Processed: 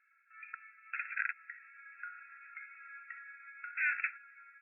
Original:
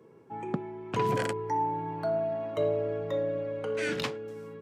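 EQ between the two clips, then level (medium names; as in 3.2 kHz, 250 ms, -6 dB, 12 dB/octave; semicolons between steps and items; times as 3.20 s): brick-wall FIR band-pass 1.3–2.7 kHz; +4.0 dB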